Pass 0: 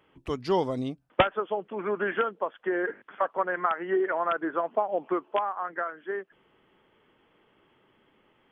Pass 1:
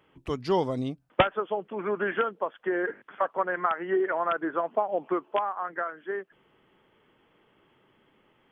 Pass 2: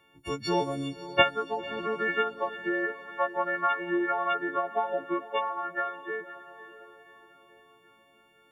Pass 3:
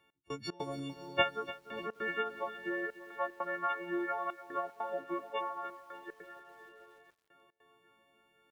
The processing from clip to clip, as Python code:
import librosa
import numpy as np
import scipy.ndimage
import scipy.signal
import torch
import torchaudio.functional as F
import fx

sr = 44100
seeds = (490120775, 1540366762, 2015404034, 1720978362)

y1 = fx.peak_eq(x, sr, hz=140.0, db=2.5, octaves=0.77)
y2 = fx.freq_snap(y1, sr, grid_st=4)
y2 = fx.echo_diffused(y2, sr, ms=546, feedback_pct=48, wet_db=-14.0)
y2 = y2 * librosa.db_to_amplitude(-2.5)
y3 = fx.step_gate(y2, sr, bpm=150, pattern='x..xx.xxxxxxxx', floor_db=-24.0, edge_ms=4.5)
y3 = fx.echo_crushed(y3, sr, ms=294, feedback_pct=55, bits=8, wet_db=-15)
y3 = y3 * librosa.db_to_amplitude(-7.5)